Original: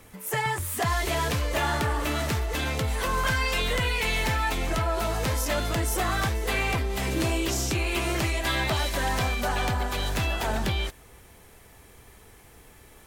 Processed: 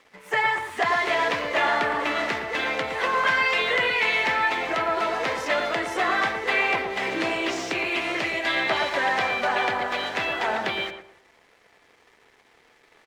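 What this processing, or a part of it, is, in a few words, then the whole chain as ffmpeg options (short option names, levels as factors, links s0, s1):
pocket radio on a weak battery: -filter_complex "[0:a]asettb=1/sr,asplit=3[s0][s1][s2];[s0]atrim=end=7.854[s3];[s1]atrim=start=7.85:end=8.7,asetpts=PTS-STARTPTS,afade=t=in:d=0.004:c=qsin,afade=t=out:st=0.846:d=0.004:c=qsin,equalizer=f=1000:t=o:w=1.4:g=-5[s4];[s2]atrim=start=8.696[s5];[s3][s4]acrossfade=d=0.004:c1=hsin:c2=qsin[s6];[s6][s5]acrossfade=d=0.004:c1=qsin:c2=hsin,highpass=390,lowpass=3500,aeval=exprs='sgn(val(0))*max(abs(val(0))-0.00126,0)':c=same,equalizer=f=2000:t=o:w=0.44:g=5,asplit=2[s7][s8];[s8]adelay=113,lowpass=f=1400:p=1,volume=0.531,asplit=2[s9][s10];[s10]adelay=113,lowpass=f=1400:p=1,volume=0.32,asplit=2[s11][s12];[s12]adelay=113,lowpass=f=1400:p=1,volume=0.32,asplit=2[s13][s14];[s14]adelay=113,lowpass=f=1400:p=1,volume=0.32[s15];[s7][s9][s11][s13][s15]amix=inputs=5:normalize=0,volume=1.68"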